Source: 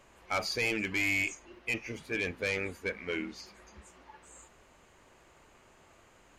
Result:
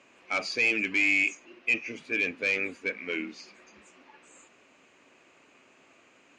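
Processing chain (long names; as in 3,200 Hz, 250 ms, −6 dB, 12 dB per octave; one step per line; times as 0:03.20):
loudspeaker in its box 200–7,700 Hz, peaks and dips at 270 Hz +7 dB, 880 Hz −4 dB, 2,500 Hz +9 dB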